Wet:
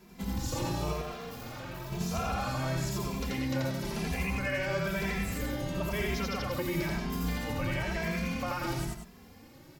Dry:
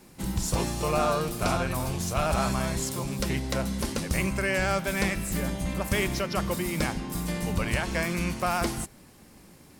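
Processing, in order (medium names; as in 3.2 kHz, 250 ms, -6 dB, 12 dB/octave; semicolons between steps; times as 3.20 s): 3.86–4.30 s: graphic EQ with 31 bands 800 Hz +10 dB, 2.5 kHz +6 dB, 10 kHz +6 dB; peak limiter -22.5 dBFS, peak gain reduction 9.5 dB; 0.93–1.92 s: hard clipper -39.5 dBFS, distortion -11 dB; peaking EQ 9.2 kHz -13 dB 0.56 oct; loudspeakers at several distances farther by 29 m -1 dB, 63 m -8 dB; endless flanger 2.6 ms +1 Hz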